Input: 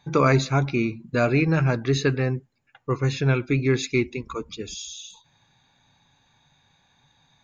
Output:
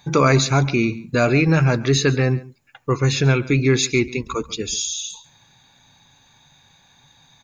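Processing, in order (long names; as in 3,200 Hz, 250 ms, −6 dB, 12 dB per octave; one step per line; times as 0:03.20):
high-shelf EQ 5,700 Hz +11.5 dB
in parallel at +0.5 dB: brickwall limiter −17.5 dBFS, peak gain reduction 11 dB
on the sum: single-tap delay 139 ms −19.5 dB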